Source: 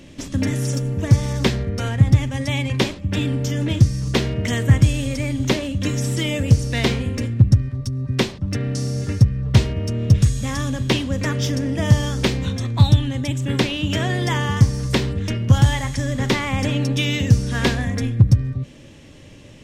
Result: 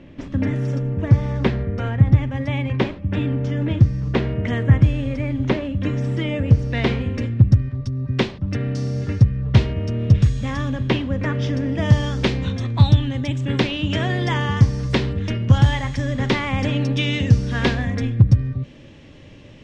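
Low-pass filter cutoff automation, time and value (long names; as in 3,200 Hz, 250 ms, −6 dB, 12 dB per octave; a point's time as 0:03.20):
0:06.52 2,100 Hz
0:07.22 3,600 Hz
0:10.40 3,600 Hz
0:11.19 2,200 Hz
0:11.94 4,200 Hz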